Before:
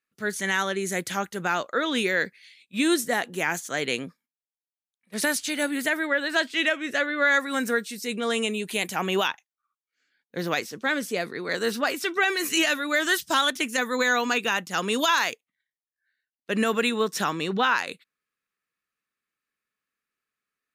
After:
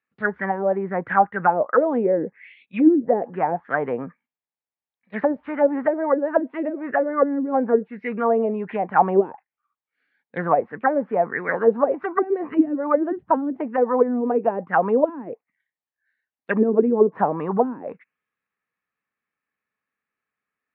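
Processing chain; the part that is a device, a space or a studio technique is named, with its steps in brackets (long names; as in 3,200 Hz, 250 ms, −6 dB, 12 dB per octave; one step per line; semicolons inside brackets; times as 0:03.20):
envelope filter bass rig (envelope-controlled low-pass 280–4,400 Hz down, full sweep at −18.5 dBFS; loudspeaker in its box 62–2,100 Hz, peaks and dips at 350 Hz −4 dB, 830 Hz +4 dB, 1,400 Hz −4 dB)
level +3.5 dB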